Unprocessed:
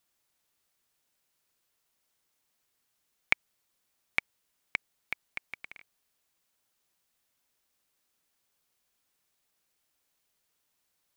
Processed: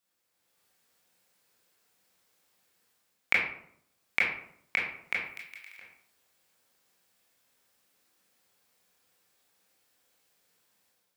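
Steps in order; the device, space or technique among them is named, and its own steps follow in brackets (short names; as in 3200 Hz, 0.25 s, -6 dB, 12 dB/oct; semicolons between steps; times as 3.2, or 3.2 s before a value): 5.23–5.77 differentiator; far laptop microphone (reverb RT60 0.65 s, pre-delay 19 ms, DRR -4.5 dB; HPF 140 Hz 6 dB/oct; AGC gain up to 8.5 dB); gain -6 dB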